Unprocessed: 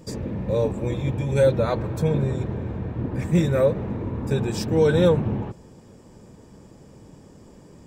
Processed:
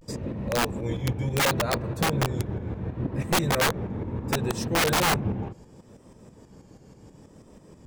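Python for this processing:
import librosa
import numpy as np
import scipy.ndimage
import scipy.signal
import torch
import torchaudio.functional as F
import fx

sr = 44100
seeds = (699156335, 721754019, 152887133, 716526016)

y = fx.vibrato(x, sr, rate_hz=0.7, depth_cents=95.0)
y = fx.tremolo_shape(y, sr, shape='saw_up', hz=6.2, depth_pct=60)
y = (np.mod(10.0 ** (17.0 / 20.0) * y + 1.0, 2.0) - 1.0) / 10.0 ** (17.0 / 20.0)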